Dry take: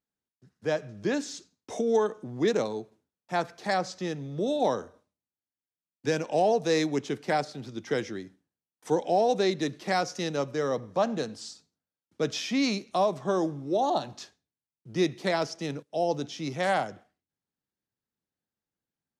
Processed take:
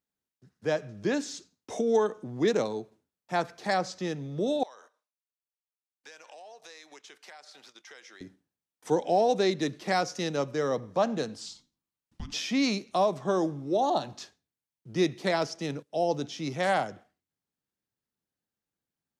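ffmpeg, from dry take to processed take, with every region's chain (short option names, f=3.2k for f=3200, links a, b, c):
-filter_complex "[0:a]asettb=1/sr,asplit=3[a][b][c];[a]atrim=end=4.634[d];[b]atrim=start=4.63:end=8.21,asetpts=PTS-STARTPTS,afade=t=in:d=0.004:c=qsin,afade=t=out:st=3.576:d=0.004:c=qsin,highpass=1k,acompressor=threshold=-46dB:ratio=6:attack=3.2:release=140:knee=1:detection=peak,agate=range=-9dB:threshold=-59dB:ratio=16:release=100:detection=peak[e];[c]atrim=start=8.206[f];[d][e]acrossfade=d=0.004:c1=hsin:c2=qsin[g];[g][f]acrossfade=d=0.004:c1=qsin:c2=hsin,asettb=1/sr,asplit=3[h][i][j];[h]atrim=end=11.464[k];[i]atrim=start=11.46:end=12.34,asetpts=PTS-STARTPTS,afade=t=in:d=0.004:c=qsin,afade=t=out:st=0.876:d=0.004:c=qsin,acompressor=threshold=-33dB:ratio=12:attack=3.2:release=140:knee=1:detection=peak,afreqshift=-410[l];[j]atrim=start=12.336[m];[k][l]acrossfade=d=0.004:c1=hsin:c2=qsin[n];[n][m]acrossfade=d=0.004:c1=qsin:c2=hsin"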